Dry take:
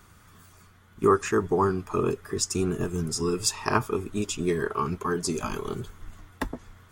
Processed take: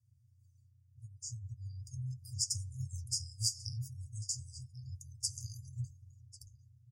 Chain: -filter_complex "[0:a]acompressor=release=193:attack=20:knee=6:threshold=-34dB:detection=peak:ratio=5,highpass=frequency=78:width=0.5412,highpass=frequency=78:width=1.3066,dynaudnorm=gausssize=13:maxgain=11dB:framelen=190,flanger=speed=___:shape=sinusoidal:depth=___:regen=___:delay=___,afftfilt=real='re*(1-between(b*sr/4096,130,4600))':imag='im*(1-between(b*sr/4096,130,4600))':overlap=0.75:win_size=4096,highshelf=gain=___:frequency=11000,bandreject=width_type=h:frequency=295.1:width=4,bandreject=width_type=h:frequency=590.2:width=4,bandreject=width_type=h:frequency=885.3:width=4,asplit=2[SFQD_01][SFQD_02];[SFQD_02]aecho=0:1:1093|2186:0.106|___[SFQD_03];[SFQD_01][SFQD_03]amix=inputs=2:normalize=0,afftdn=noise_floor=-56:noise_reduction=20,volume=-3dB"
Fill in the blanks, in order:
1, 1.4, 55, 7.4, -7.5, 0.0201